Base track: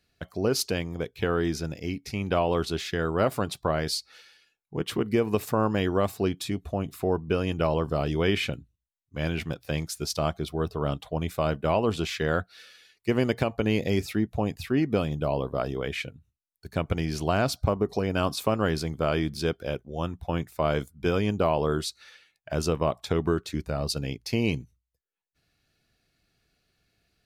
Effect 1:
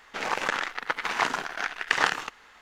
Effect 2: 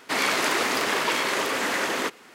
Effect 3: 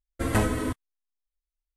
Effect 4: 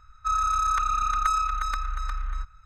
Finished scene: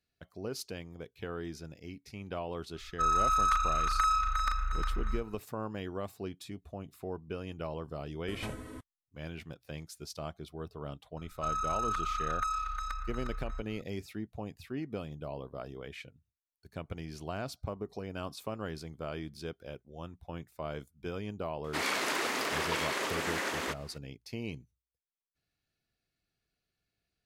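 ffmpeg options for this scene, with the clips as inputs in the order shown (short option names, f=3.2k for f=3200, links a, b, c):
-filter_complex "[4:a]asplit=2[a][b];[0:a]volume=-13.5dB[c];[a]asplit=2[d][e];[e]adelay=38,volume=-4dB[f];[d][f]amix=inputs=2:normalize=0[g];[b]acompressor=mode=upward:threshold=-36dB:ratio=2.5:attack=3.2:release=140:knee=2.83:detection=peak[h];[g]atrim=end=2.65,asetpts=PTS-STARTPTS,volume=-3.5dB,afade=t=in:d=0.004:c=hsin,afade=t=out:st=2.646:d=0.004:c=hsin,adelay=2740[i];[3:a]atrim=end=1.76,asetpts=PTS-STARTPTS,volume=-17dB,afade=t=in:d=0.004:c=hsin,afade=t=out:st=1.756:d=0.004:c=hsin,adelay=8080[j];[h]atrim=end=2.65,asetpts=PTS-STARTPTS,volume=-9dB,afade=t=in:d=0.004:c=hsin,afade=t=out:st=2.646:d=0.004:c=hsin,adelay=11170[k];[2:a]atrim=end=2.34,asetpts=PTS-STARTPTS,volume=-8.5dB,afade=t=in:d=0.004:c=hsin,afade=t=out:st=2.336:d=0.004:c=hsin,adelay=954324S[l];[c][i][j][k][l]amix=inputs=5:normalize=0"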